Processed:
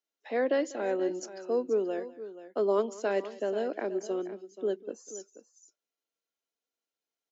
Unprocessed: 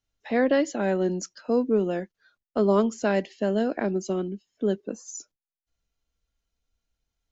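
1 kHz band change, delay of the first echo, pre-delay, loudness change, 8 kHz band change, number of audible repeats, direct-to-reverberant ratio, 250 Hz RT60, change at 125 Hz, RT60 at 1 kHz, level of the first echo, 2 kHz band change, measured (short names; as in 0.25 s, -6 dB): -5.5 dB, 0.195 s, none, -5.5 dB, n/a, 2, none, none, under -15 dB, none, -20.0 dB, -6.5 dB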